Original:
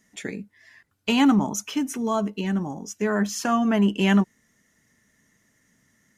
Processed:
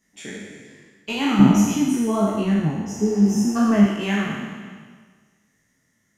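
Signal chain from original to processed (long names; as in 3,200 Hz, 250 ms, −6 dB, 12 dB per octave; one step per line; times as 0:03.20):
peak hold with a decay on every bin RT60 1.63 s
0:01.39–0:03.84: low-shelf EQ 470 Hz +12 dB
0:02.98–0:03.54: healed spectral selection 460–5,200 Hz before
micro pitch shift up and down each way 43 cents
level −2 dB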